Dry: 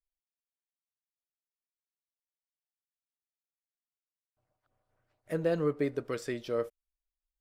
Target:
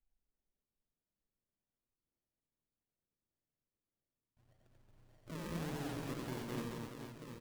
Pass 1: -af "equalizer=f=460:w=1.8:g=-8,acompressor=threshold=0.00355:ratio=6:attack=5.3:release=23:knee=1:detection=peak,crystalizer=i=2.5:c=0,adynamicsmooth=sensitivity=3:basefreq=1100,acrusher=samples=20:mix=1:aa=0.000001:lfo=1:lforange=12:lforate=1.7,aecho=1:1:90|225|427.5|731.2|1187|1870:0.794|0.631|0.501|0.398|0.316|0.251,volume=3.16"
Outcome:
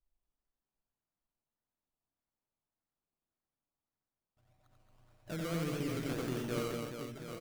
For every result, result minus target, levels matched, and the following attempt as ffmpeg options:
decimation with a swept rate: distortion -9 dB; compression: peak gain reduction -5.5 dB
-af "equalizer=f=460:w=1.8:g=-8,acompressor=threshold=0.00355:ratio=6:attack=5.3:release=23:knee=1:detection=peak,crystalizer=i=2.5:c=0,adynamicsmooth=sensitivity=3:basefreq=1100,acrusher=samples=49:mix=1:aa=0.000001:lfo=1:lforange=29.4:lforate=1.7,aecho=1:1:90|225|427.5|731.2|1187|1870:0.794|0.631|0.501|0.398|0.316|0.251,volume=3.16"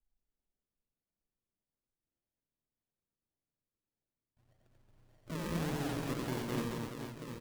compression: peak gain reduction -5.5 dB
-af "equalizer=f=460:w=1.8:g=-8,acompressor=threshold=0.00168:ratio=6:attack=5.3:release=23:knee=1:detection=peak,crystalizer=i=2.5:c=0,adynamicsmooth=sensitivity=3:basefreq=1100,acrusher=samples=49:mix=1:aa=0.000001:lfo=1:lforange=29.4:lforate=1.7,aecho=1:1:90|225|427.5|731.2|1187|1870:0.794|0.631|0.501|0.398|0.316|0.251,volume=3.16"

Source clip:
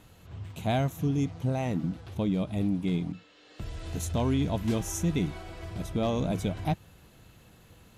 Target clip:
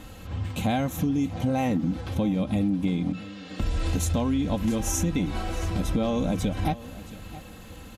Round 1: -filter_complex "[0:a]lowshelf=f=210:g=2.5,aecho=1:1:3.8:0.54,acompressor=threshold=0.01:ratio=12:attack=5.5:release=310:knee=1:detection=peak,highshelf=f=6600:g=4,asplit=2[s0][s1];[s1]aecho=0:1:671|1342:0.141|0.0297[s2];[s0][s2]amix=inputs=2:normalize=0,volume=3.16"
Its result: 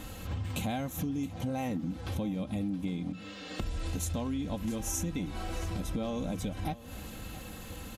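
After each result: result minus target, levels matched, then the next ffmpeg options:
compression: peak gain reduction +8.5 dB; 8 kHz band +3.5 dB
-filter_complex "[0:a]lowshelf=f=210:g=2.5,aecho=1:1:3.8:0.54,acompressor=threshold=0.0299:ratio=12:attack=5.5:release=310:knee=1:detection=peak,highshelf=f=6600:g=4,asplit=2[s0][s1];[s1]aecho=0:1:671|1342:0.141|0.0297[s2];[s0][s2]amix=inputs=2:normalize=0,volume=3.16"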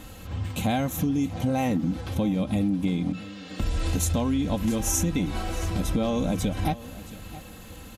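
8 kHz band +3.0 dB
-filter_complex "[0:a]lowshelf=f=210:g=2.5,aecho=1:1:3.8:0.54,acompressor=threshold=0.0299:ratio=12:attack=5.5:release=310:knee=1:detection=peak,highshelf=f=6600:g=-2,asplit=2[s0][s1];[s1]aecho=0:1:671|1342:0.141|0.0297[s2];[s0][s2]amix=inputs=2:normalize=0,volume=3.16"

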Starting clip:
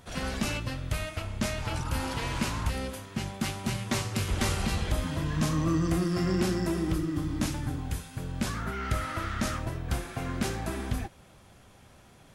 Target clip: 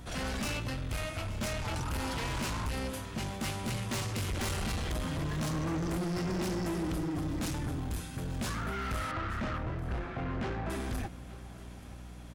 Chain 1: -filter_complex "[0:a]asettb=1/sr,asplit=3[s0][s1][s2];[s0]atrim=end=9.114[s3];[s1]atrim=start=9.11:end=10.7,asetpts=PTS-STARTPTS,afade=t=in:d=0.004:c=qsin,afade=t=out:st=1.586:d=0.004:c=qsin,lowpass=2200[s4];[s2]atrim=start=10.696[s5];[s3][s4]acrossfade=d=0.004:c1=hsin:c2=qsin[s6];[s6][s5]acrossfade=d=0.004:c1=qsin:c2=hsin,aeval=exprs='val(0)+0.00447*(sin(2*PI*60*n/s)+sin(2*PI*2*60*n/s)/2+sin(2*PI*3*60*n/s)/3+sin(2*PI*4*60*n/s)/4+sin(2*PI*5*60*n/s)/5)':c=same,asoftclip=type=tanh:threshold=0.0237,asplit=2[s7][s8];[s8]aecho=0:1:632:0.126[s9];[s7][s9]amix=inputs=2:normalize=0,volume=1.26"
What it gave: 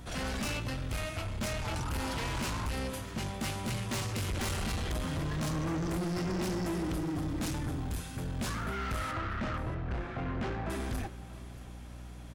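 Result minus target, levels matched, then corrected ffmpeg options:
echo 246 ms early
-filter_complex "[0:a]asettb=1/sr,asplit=3[s0][s1][s2];[s0]atrim=end=9.114[s3];[s1]atrim=start=9.11:end=10.7,asetpts=PTS-STARTPTS,afade=t=in:d=0.004:c=qsin,afade=t=out:st=1.586:d=0.004:c=qsin,lowpass=2200[s4];[s2]atrim=start=10.696[s5];[s3][s4]acrossfade=d=0.004:c1=hsin:c2=qsin[s6];[s6][s5]acrossfade=d=0.004:c1=qsin:c2=hsin,aeval=exprs='val(0)+0.00447*(sin(2*PI*60*n/s)+sin(2*PI*2*60*n/s)/2+sin(2*PI*3*60*n/s)/3+sin(2*PI*4*60*n/s)/4+sin(2*PI*5*60*n/s)/5)':c=same,asoftclip=type=tanh:threshold=0.0237,asplit=2[s7][s8];[s8]aecho=0:1:878:0.126[s9];[s7][s9]amix=inputs=2:normalize=0,volume=1.26"

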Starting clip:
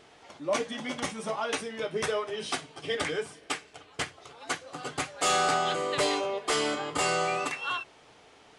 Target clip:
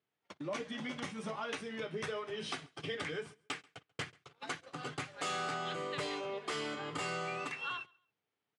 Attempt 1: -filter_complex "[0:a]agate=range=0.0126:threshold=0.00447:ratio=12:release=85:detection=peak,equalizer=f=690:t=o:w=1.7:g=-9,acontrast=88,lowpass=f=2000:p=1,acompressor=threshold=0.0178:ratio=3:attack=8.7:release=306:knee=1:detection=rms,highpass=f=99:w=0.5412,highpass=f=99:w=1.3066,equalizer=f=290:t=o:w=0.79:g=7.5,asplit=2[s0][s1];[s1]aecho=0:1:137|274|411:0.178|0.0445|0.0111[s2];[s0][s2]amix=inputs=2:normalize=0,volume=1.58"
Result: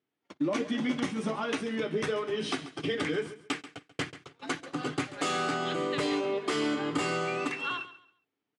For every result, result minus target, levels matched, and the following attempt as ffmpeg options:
echo-to-direct +11 dB; compression: peak gain reduction -5.5 dB; 250 Hz band +5.0 dB
-filter_complex "[0:a]agate=range=0.0126:threshold=0.00447:ratio=12:release=85:detection=peak,equalizer=f=690:t=o:w=1.7:g=-9,acontrast=88,lowpass=f=2000:p=1,acompressor=threshold=0.0178:ratio=3:attack=8.7:release=306:knee=1:detection=rms,highpass=f=99:w=0.5412,highpass=f=99:w=1.3066,equalizer=f=290:t=o:w=0.79:g=7.5,asplit=2[s0][s1];[s1]aecho=0:1:137|274:0.0501|0.0125[s2];[s0][s2]amix=inputs=2:normalize=0,volume=1.58"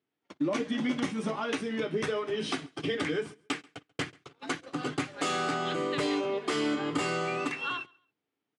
compression: peak gain reduction -5.5 dB; 250 Hz band +5.5 dB
-filter_complex "[0:a]agate=range=0.0126:threshold=0.00447:ratio=12:release=85:detection=peak,equalizer=f=690:t=o:w=1.7:g=-9,acontrast=88,lowpass=f=2000:p=1,acompressor=threshold=0.00668:ratio=3:attack=8.7:release=306:knee=1:detection=rms,highpass=f=99:w=0.5412,highpass=f=99:w=1.3066,equalizer=f=290:t=o:w=0.79:g=7.5,asplit=2[s0][s1];[s1]aecho=0:1:137|274:0.0501|0.0125[s2];[s0][s2]amix=inputs=2:normalize=0,volume=1.58"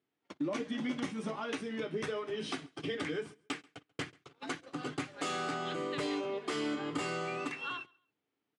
250 Hz band +5.5 dB
-filter_complex "[0:a]agate=range=0.0126:threshold=0.00447:ratio=12:release=85:detection=peak,equalizer=f=690:t=o:w=1.7:g=-9,acontrast=88,lowpass=f=2000:p=1,acompressor=threshold=0.00668:ratio=3:attack=8.7:release=306:knee=1:detection=rms,highpass=f=99:w=0.5412,highpass=f=99:w=1.3066,equalizer=f=290:t=o:w=0.79:g=-3,asplit=2[s0][s1];[s1]aecho=0:1:137|274:0.0501|0.0125[s2];[s0][s2]amix=inputs=2:normalize=0,volume=1.58"

